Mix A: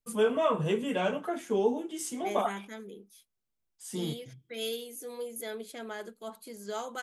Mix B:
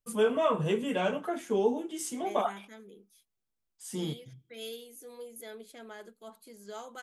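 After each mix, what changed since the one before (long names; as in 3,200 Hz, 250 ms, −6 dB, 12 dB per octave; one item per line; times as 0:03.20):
second voice −6.5 dB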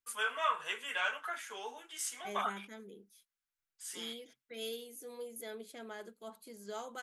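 first voice: add high-pass with resonance 1,500 Hz, resonance Q 1.9
reverb: off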